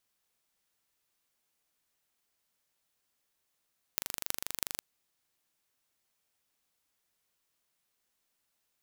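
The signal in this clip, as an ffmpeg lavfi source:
-f lavfi -i "aevalsrc='0.794*eq(mod(n,1785),0)*(0.5+0.5*eq(mod(n,14280),0))':d=0.84:s=44100"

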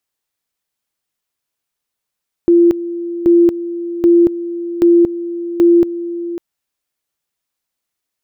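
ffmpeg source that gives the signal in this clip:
-f lavfi -i "aevalsrc='pow(10,(-5.5-14*gte(mod(t,0.78),0.23))/20)*sin(2*PI*343*t)':d=3.9:s=44100"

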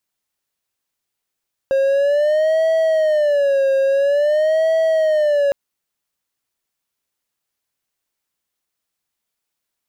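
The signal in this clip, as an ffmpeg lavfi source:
-f lavfi -i "aevalsrc='0.282*(1-4*abs(mod((593.5*t-53.5/(2*PI*0.49)*sin(2*PI*0.49*t))+0.25,1)-0.5))':d=3.81:s=44100"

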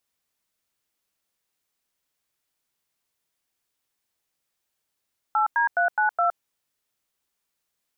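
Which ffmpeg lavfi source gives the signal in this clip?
-f lavfi -i "aevalsrc='0.0891*clip(min(mod(t,0.209),0.115-mod(t,0.209))/0.002,0,1)*(eq(floor(t/0.209),0)*(sin(2*PI*852*mod(t,0.209))+sin(2*PI*1336*mod(t,0.209)))+eq(floor(t/0.209),1)*(sin(2*PI*941*mod(t,0.209))+sin(2*PI*1633*mod(t,0.209)))+eq(floor(t/0.209),2)*(sin(2*PI*697*mod(t,0.209))+sin(2*PI*1477*mod(t,0.209)))+eq(floor(t/0.209),3)*(sin(2*PI*852*mod(t,0.209))+sin(2*PI*1477*mod(t,0.209)))+eq(floor(t/0.209),4)*(sin(2*PI*697*mod(t,0.209))+sin(2*PI*1336*mod(t,0.209))))':d=1.045:s=44100"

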